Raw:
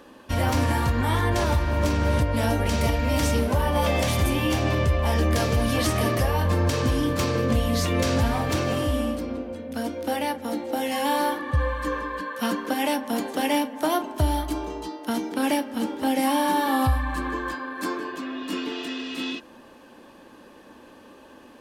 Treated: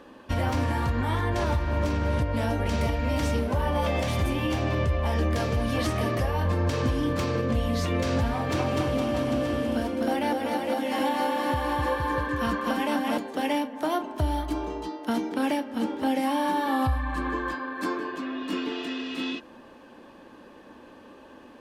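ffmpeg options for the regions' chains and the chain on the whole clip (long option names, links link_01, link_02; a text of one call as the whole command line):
ffmpeg -i in.wav -filter_complex "[0:a]asettb=1/sr,asplit=3[link_01][link_02][link_03];[link_01]atrim=end=8.344[link_04];[link_02]atrim=start=8.34:end=13.18,asetpts=PTS-STARTPTS,afade=type=in:duration=0.004:curve=qsin,afade=type=out:start_time=4.836:duration=0.004:curve=qsin,highpass=82,aecho=1:1:250|462.5|643.1|796.7|927.2:0.794|0.631|0.501|0.398|0.316,atrim=end_sample=213444[link_05];[link_03]atrim=start=13.176[link_06];[link_04][link_05]acrossfade=duration=0.004:curve1=hsin:curve2=qsin[link_07];[link_07][link_06]acrossfade=duration=0.004:curve1=qsin:curve2=hsin,highshelf=frequency=5600:gain=-10,alimiter=limit=-16.5dB:level=0:latency=1:release=381" out.wav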